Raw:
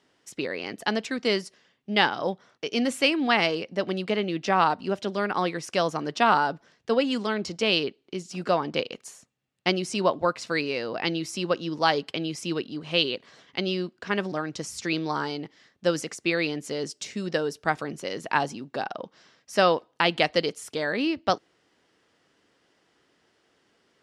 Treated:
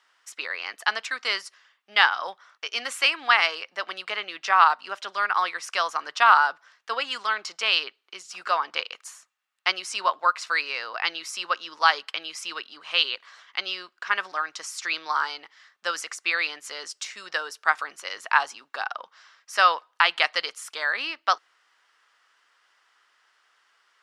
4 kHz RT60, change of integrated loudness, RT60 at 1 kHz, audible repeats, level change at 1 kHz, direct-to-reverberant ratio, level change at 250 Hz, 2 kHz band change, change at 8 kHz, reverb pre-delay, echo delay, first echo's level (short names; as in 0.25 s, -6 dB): none, +2.0 dB, none, none, +3.5 dB, none, -22.5 dB, +5.5 dB, +1.5 dB, none, none, none